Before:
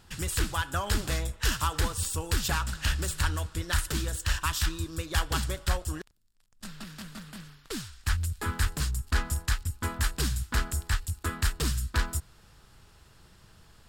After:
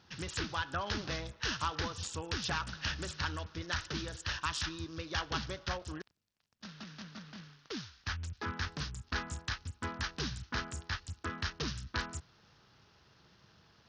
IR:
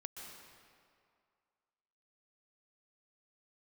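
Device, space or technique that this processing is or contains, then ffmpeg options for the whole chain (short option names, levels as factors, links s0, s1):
Bluetooth headset: -af "highpass=110,aresample=16000,aresample=44100,volume=0.596" -ar 48000 -c:a sbc -b:a 64k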